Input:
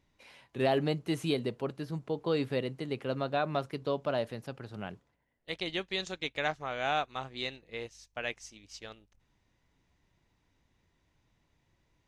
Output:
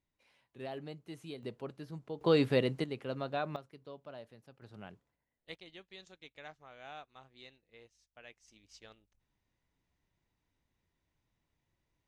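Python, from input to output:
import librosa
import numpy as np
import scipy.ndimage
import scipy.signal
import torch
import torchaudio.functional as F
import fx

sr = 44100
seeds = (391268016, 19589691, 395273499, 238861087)

y = fx.gain(x, sr, db=fx.steps((0.0, -15.0), (1.43, -8.0), (2.21, 3.5), (2.84, -5.0), (3.56, -17.0), (4.62, -9.0), (5.55, -18.0), (8.48, -9.5)))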